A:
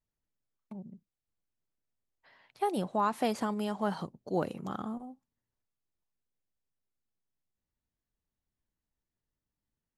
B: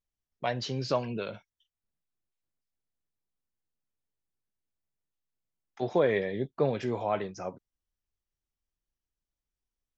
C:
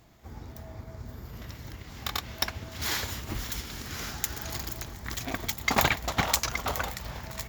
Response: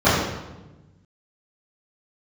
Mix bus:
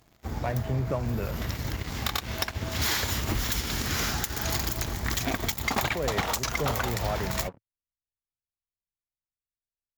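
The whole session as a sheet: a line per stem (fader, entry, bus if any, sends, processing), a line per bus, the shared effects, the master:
off
-10.5 dB, 0.00 s, bus A, no send, steep low-pass 2500 Hz; bell 110 Hz +10.5 dB 0.99 oct
-1.0 dB, 0.00 s, bus A, no send, dry
bus A: 0.0 dB, compressor 5:1, threshold -35 dBFS, peak gain reduction 14.5 dB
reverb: off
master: sample leveller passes 3

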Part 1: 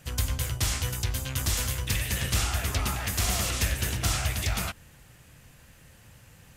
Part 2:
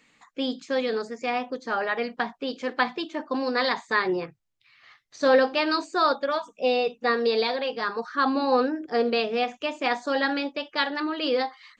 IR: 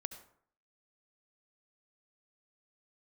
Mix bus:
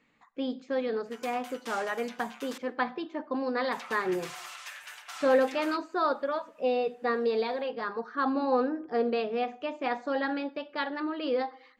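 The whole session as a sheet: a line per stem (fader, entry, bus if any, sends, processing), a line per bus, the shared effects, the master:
+1.0 dB, 1.05 s, muted 2.58–3.72, send -19 dB, inverse Chebyshev high-pass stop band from 150 Hz, stop band 80 dB; comb 6.8 ms, depth 55%; auto duck -8 dB, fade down 1.45 s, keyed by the second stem
-5.5 dB, 0.00 s, send -8.5 dB, dry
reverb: on, RT60 0.60 s, pre-delay 62 ms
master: LPF 1400 Hz 6 dB/oct

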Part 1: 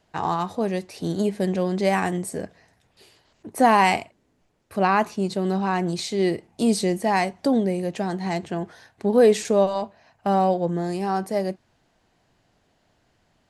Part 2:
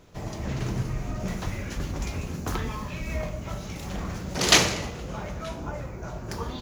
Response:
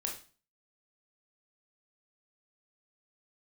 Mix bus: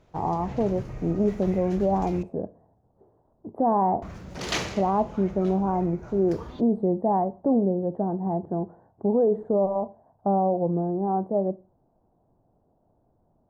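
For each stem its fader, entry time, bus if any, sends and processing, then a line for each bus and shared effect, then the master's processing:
-1.0 dB, 0.00 s, send -15 dB, inverse Chebyshev low-pass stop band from 2300 Hz, stop band 50 dB
-8.0 dB, 0.00 s, muted 2.23–4.02, send -15 dB, high shelf 5300 Hz -10.5 dB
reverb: on, RT60 0.35 s, pre-delay 19 ms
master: limiter -14 dBFS, peak gain reduction 8 dB

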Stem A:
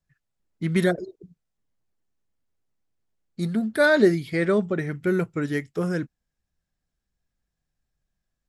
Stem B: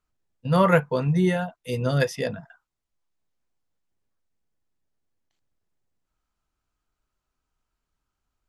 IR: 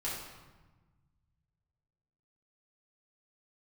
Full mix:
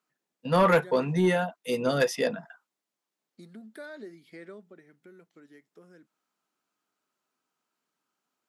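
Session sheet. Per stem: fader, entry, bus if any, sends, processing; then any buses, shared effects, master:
4.47 s -13 dB -> 4.88 s -20.5 dB, 0.00 s, no send, compressor 3:1, threshold -31 dBFS, peak gain reduction 14 dB
+2.0 dB, 0.00 s, no send, soft clip -9 dBFS, distortion -23 dB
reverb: off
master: HPF 200 Hz 24 dB/oct; soft clip -13 dBFS, distortion -16 dB

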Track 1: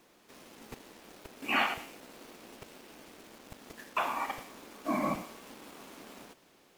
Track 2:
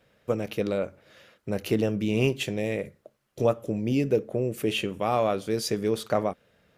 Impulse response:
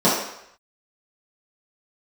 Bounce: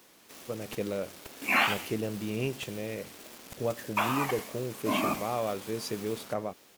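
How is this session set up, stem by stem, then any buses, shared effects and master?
+1.5 dB, 0.00 s, no send, low shelf 270 Hz +9 dB; wow and flutter 130 cents; tilt +2.5 dB/oct
-8.0 dB, 0.20 s, no send, AGC gain up to 10 dB; auto duck -8 dB, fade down 1.10 s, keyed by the first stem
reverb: off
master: dry

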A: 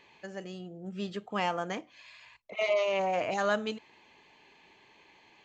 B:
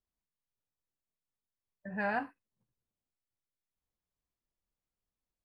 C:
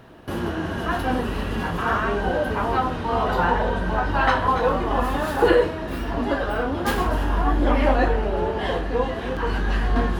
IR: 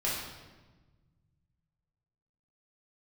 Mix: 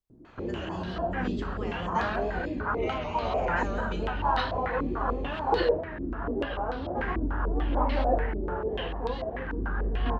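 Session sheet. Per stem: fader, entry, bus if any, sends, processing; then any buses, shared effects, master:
-6.0 dB, 0.25 s, send -6 dB, limiter -28 dBFS, peak gain reduction 11.5 dB
-1.5 dB, 0.00 s, no send, dry
-11.0 dB, 0.10 s, no send, stepped low-pass 6.8 Hz 310–4200 Hz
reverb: on, RT60 1.3 s, pre-delay 6 ms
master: vibrato 4.5 Hz 47 cents; low shelf 99 Hz +5.5 dB

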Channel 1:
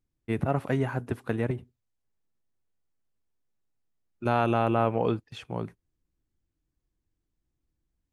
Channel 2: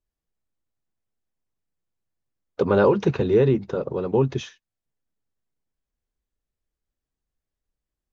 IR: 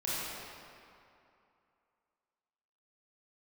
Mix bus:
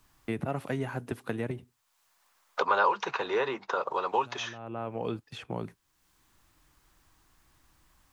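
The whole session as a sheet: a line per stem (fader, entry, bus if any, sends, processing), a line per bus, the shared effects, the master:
-7.5 dB, 0.00 s, no send, auto duck -18 dB, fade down 0.95 s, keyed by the second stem
+2.5 dB, 0.00 s, no send, resonant high-pass 1000 Hz, resonance Q 2.3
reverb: off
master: three-band squash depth 70%

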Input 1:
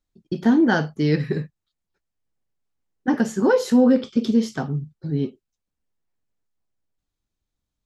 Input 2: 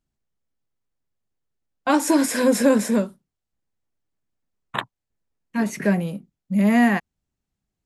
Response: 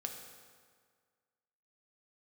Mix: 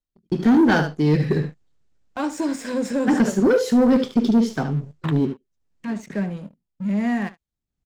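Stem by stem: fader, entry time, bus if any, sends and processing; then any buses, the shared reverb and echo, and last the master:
-2.5 dB, 0.00 s, no send, echo send -10 dB, rotary speaker horn 1.2 Hz
-16.0 dB, 0.30 s, no send, echo send -15 dB, steep low-pass 8400 Hz; low shelf 250 Hz +6.5 dB; upward compressor, threshold -22 dBFS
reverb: off
echo: echo 74 ms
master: sample leveller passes 2

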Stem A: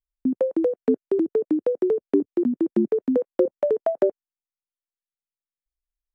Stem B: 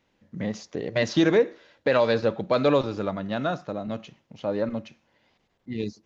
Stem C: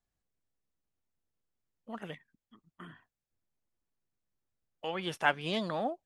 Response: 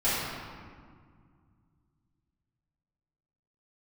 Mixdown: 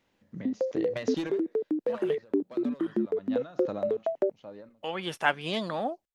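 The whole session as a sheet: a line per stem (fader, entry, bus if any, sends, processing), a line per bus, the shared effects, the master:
-6.5 dB, 0.20 s, no send, dry
-2.0 dB, 0.00 s, no send, overloaded stage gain 15.5 dB; ending taper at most 110 dB/s; auto duck -20 dB, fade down 1.10 s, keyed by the third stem
+2.5 dB, 0.00 s, no send, dry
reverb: off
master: low shelf 100 Hz -6 dB

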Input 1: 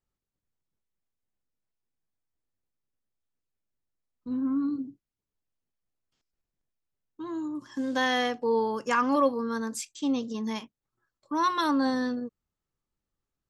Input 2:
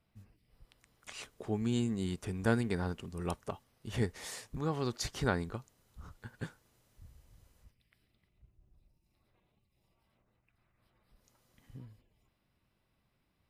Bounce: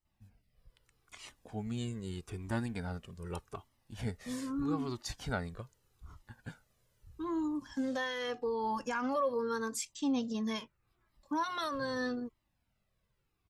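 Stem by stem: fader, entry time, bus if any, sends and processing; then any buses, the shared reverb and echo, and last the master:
+2.5 dB, 0.00 s, no send, limiter -23.5 dBFS, peak gain reduction 10 dB
0.0 dB, 0.05 s, no send, dry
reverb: off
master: cascading flanger falling 0.81 Hz

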